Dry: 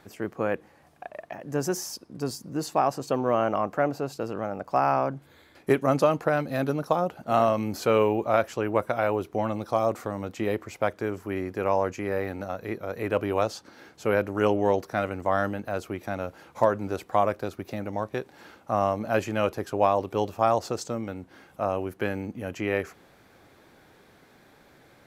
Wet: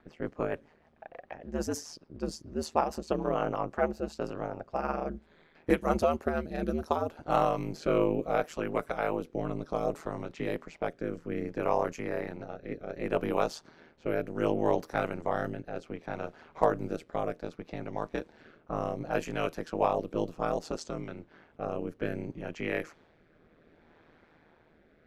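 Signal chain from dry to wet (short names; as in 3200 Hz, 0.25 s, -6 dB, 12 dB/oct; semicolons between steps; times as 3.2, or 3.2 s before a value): rotary speaker horn 6.7 Hz, later 0.65 Hz, at 3.31; ring modulator 79 Hz; low-pass opened by the level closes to 2500 Hz, open at -26.5 dBFS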